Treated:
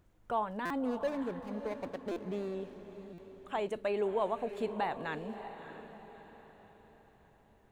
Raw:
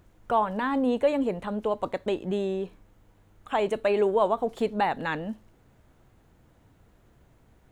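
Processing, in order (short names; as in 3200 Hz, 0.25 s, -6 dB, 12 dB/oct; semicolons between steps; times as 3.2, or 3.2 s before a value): 0.85–2.55 median filter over 41 samples; diffused feedback echo 0.623 s, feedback 44%, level -11 dB; stuck buffer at 0.65/2.11/3.13, samples 256, times 8; gain -9 dB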